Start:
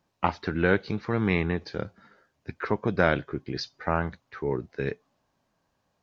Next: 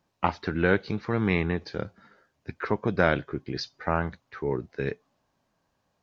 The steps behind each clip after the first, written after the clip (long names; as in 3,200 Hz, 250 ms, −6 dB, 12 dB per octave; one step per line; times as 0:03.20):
no processing that can be heard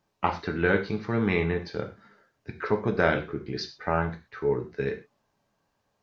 reverb whose tail is shaped and stops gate 150 ms falling, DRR 4 dB
level −1.5 dB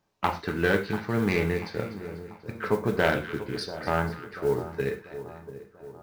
phase distortion by the signal itself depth 0.16 ms
echo with a time of its own for lows and highs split 1,200 Hz, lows 689 ms, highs 245 ms, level −13 dB
noise that follows the level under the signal 27 dB